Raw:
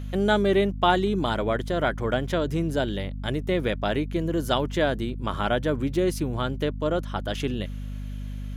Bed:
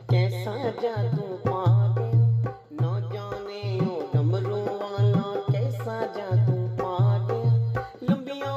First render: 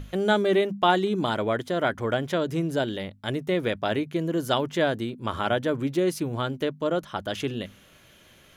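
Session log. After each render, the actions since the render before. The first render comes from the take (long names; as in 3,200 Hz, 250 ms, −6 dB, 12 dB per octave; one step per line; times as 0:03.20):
mains-hum notches 50/100/150/200/250 Hz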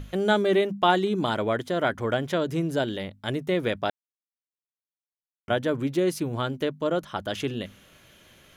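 0:03.90–0:05.48: silence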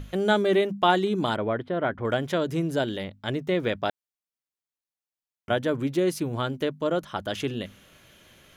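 0:01.36–0:02.05: high-frequency loss of the air 440 metres
0:03.04–0:03.83: parametric band 11,000 Hz −12 dB 0.57 octaves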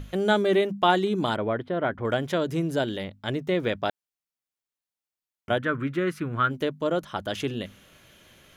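0:05.58–0:06.51: drawn EQ curve 180 Hz 0 dB, 860 Hz −7 dB, 1,300 Hz +12 dB, 2,300 Hz +3 dB, 4,900 Hz −12 dB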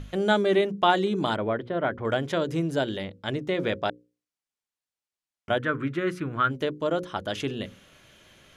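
low-pass filter 9,800 Hz 12 dB per octave
mains-hum notches 60/120/180/240/300/360/420/480/540 Hz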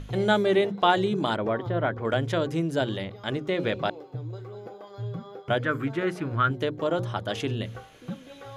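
mix in bed −13 dB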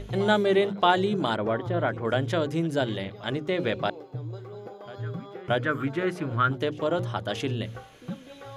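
backwards echo 627 ms −19.5 dB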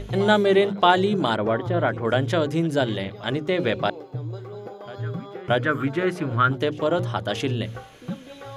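level +4 dB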